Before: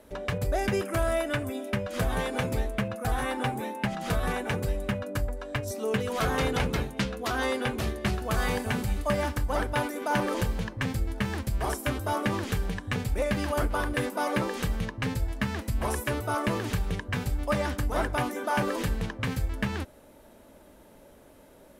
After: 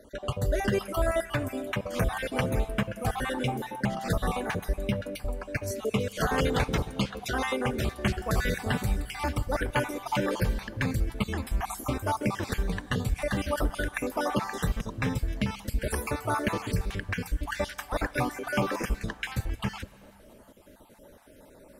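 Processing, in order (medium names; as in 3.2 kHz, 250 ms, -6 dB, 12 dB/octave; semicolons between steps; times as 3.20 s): random holes in the spectrogram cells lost 37%; Schroeder reverb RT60 2.8 s, combs from 31 ms, DRR 19 dB; 15.75–16.86 s: whistle 450 Hz -49 dBFS; trim +1.5 dB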